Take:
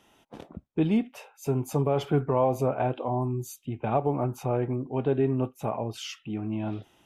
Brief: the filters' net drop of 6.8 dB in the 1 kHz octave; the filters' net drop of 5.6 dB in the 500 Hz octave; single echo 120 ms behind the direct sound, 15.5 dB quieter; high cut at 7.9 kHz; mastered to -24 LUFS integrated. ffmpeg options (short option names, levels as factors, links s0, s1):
-af "lowpass=7900,equalizer=f=500:t=o:g=-5.5,equalizer=f=1000:t=o:g=-7,aecho=1:1:120:0.168,volume=2.24"